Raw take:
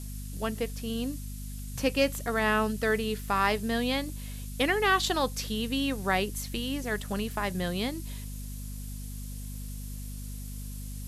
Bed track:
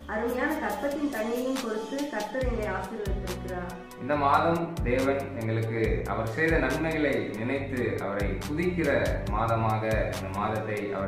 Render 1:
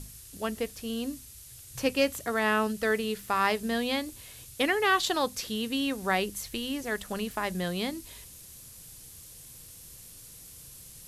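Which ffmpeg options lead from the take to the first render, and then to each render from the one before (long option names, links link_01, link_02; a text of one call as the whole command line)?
ffmpeg -i in.wav -af "bandreject=frequency=50:width_type=h:width=6,bandreject=frequency=100:width_type=h:width=6,bandreject=frequency=150:width_type=h:width=6,bandreject=frequency=200:width_type=h:width=6,bandreject=frequency=250:width_type=h:width=6" out.wav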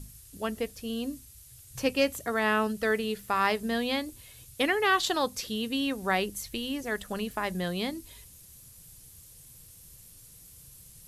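ffmpeg -i in.wav -af "afftdn=noise_reduction=6:noise_floor=-49" out.wav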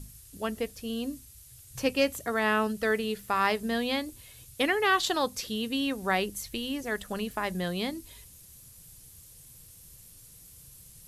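ffmpeg -i in.wav -af anull out.wav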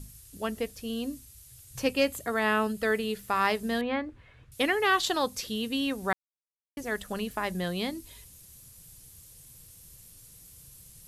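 ffmpeg -i in.wav -filter_complex "[0:a]asettb=1/sr,asplit=3[link_01][link_02][link_03];[link_01]atrim=end=1.924[link_04];[link_02]atrim=start=1.92:end=3.14,asetpts=PTS-STARTPTS,afade=type=in:duration=0.004:curve=qsin,afade=type=out:start_time=1.216:duration=0.004:curve=qsin,bandreject=frequency=5800:width=8.4[link_05];[link_03]atrim=start=3.136[link_06];[link_04][link_05]acrossfade=duration=0.004:curve1=hsin:curve2=qsin[link_07];[link_07][link_06]acrossfade=duration=0.004:curve1=qsin:curve2=hsin,asettb=1/sr,asplit=3[link_08][link_09][link_10];[link_08]atrim=end=3.814[link_11];[link_09]atrim=start=3.81:end=4.52,asetpts=PTS-STARTPTS,afade=type=in:duration=0.004:curve=qsin,afade=type=out:start_time=0.706:duration=0.004:curve=qsin,lowpass=frequency=1600:width_type=q:width=1.8[link_12];[link_10]atrim=start=4.516[link_13];[link_11][link_12]acrossfade=duration=0.004:curve1=hsin:curve2=qsin[link_14];[link_14][link_13]acrossfade=duration=0.004:curve1=qsin:curve2=hsin,asplit=3[link_15][link_16][link_17];[link_15]atrim=end=6.13,asetpts=PTS-STARTPTS,afade=type=out:start_time=6.126:duration=0.004:curve=hsin[link_18];[link_16]atrim=start=6.13:end=6.77,asetpts=PTS-STARTPTS,volume=0[link_19];[link_17]atrim=start=6.77,asetpts=PTS-STARTPTS,afade=type=in:duration=0.004:curve=hsin[link_20];[link_18][link_19][link_20]concat=n=3:v=0:a=1" out.wav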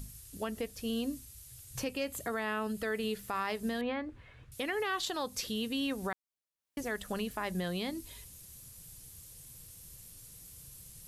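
ffmpeg -i in.wav -af "alimiter=level_in=0.5dB:limit=-24dB:level=0:latency=1:release=165,volume=-0.5dB,acompressor=mode=upward:threshold=-55dB:ratio=2.5" out.wav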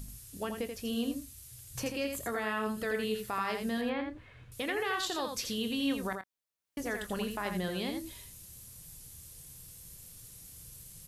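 ffmpeg -i in.wav -filter_complex "[0:a]asplit=2[link_01][link_02];[link_02]adelay=25,volume=-12.5dB[link_03];[link_01][link_03]amix=inputs=2:normalize=0,aecho=1:1:83:0.501" out.wav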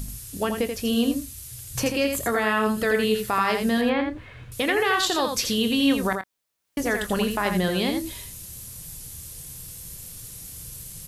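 ffmpeg -i in.wav -af "volume=11dB" out.wav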